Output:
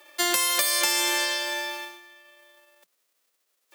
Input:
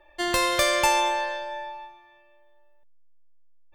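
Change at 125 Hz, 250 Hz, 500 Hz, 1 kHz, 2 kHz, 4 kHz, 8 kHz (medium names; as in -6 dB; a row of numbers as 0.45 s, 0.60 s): no reading, -3.0 dB, -7.0 dB, -7.0 dB, +0.5 dB, +4.0 dB, +6.5 dB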